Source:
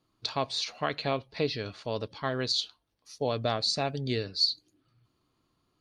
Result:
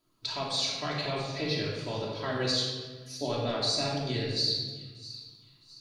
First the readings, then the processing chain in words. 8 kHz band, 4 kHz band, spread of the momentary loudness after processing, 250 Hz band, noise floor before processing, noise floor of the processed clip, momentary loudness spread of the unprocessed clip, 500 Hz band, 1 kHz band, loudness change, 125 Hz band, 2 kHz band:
+3.5 dB, +0.5 dB, 14 LU, +1.0 dB, -76 dBFS, -61 dBFS, 9 LU, -1.0 dB, -2.0 dB, 0.0 dB, +1.5 dB, +0.5 dB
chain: high shelf 6600 Hz +11.5 dB; limiter -19 dBFS, peak gain reduction 8.5 dB; resonator 990 Hz, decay 0.32 s, mix 60%; flange 1.8 Hz, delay 1.5 ms, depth 5.7 ms, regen +56%; thin delay 0.662 s, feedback 41%, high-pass 3800 Hz, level -13.5 dB; shoebox room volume 1300 m³, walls mixed, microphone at 2.9 m; gain +7.5 dB

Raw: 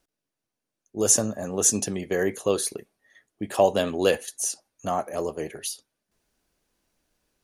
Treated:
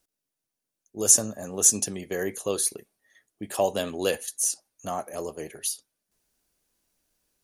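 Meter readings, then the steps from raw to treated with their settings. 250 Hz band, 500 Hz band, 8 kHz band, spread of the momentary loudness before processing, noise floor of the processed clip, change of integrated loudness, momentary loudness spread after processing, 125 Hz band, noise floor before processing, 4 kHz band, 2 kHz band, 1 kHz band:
-5.0 dB, -5.0 dB, +2.0 dB, 13 LU, under -85 dBFS, 0.0 dB, 17 LU, -5.0 dB, under -85 dBFS, -1.0 dB, -4.0 dB, -5.0 dB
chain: high shelf 5500 Hz +11 dB; gain -5 dB

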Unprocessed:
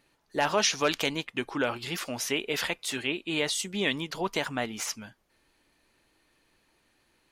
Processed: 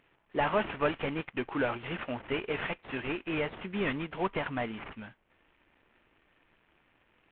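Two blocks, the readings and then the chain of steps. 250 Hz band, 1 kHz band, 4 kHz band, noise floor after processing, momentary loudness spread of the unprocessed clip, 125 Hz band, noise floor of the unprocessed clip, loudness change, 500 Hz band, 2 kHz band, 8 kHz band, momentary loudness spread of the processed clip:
-1.5 dB, -1.5 dB, -12.5 dB, -70 dBFS, 9 LU, +0.5 dB, -70 dBFS, -4.0 dB, -1.5 dB, -4.0 dB, under -40 dB, 8 LU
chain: CVSD 16 kbps

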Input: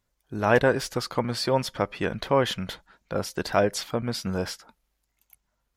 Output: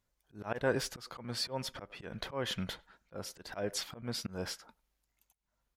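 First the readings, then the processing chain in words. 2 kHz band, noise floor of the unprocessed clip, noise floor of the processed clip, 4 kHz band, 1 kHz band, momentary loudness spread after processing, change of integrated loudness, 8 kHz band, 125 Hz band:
-12.0 dB, -77 dBFS, -83 dBFS, -6.5 dB, -16.0 dB, 13 LU, -12.0 dB, -6.0 dB, -12.0 dB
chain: speakerphone echo 0.1 s, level -25 dB; auto swell 0.245 s; gain -5 dB

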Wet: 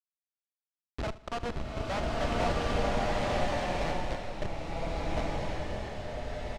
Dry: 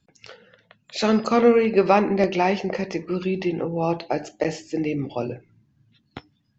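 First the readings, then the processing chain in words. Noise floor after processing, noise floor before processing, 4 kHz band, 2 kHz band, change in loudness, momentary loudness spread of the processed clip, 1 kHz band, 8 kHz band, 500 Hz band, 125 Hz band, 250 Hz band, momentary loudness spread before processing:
under -85 dBFS, -68 dBFS, -4.0 dB, -6.0 dB, -11.0 dB, 9 LU, -8.0 dB, n/a, -12.0 dB, -4.5 dB, -14.0 dB, 12 LU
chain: steep high-pass 520 Hz 96 dB/oct; tremolo saw up 7.3 Hz, depth 55%; Schmitt trigger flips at -24 dBFS; air absorption 99 m; feedback echo 77 ms, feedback 34%, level -17.5 dB; bloom reverb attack 1.39 s, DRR -7.5 dB

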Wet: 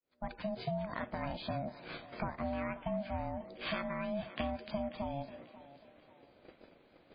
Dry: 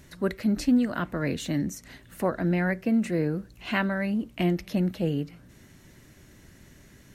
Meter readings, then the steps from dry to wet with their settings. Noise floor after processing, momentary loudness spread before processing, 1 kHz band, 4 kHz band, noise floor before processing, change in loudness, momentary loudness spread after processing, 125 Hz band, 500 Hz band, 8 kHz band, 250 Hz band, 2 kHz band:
-65 dBFS, 9 LU, -4.0 dB, -7.0 dB, -54 dBFS, -12.0 dB, 15 LU, -13.0 dB, -8.0 dB, under -35 dB, -15.5 dB, -11.0 dB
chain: opening faded in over 1.11 s; gate -49 dBFS, range -14 dB; dynamic EQ 2400 Hz, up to -4 dB, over -50 dBFS, Q 5.6; compressor 6:1, threshold -38 dBFS, peak gain reduction 16.5 dB; ring modulator 420 Hz; on a send: thinning echo 0.54 s, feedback 40%, high-pass 290 Hz, level -15 dB; on the sum: gain +5.5 dB; MP3 16 kbps 11025 Hz

